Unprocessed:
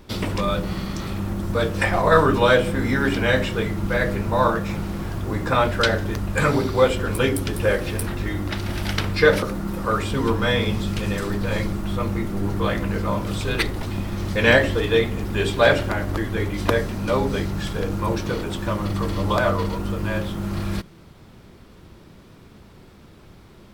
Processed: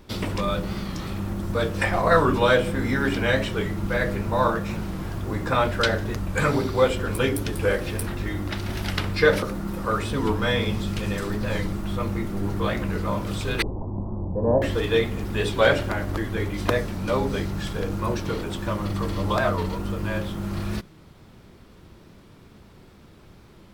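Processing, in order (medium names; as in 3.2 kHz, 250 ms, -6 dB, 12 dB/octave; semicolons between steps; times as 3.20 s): 13.62–14.62 s: Chebyshev low-pass 1 kHz, order 5; warped record 45 rpm, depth 100 cents; trim -2.5 dB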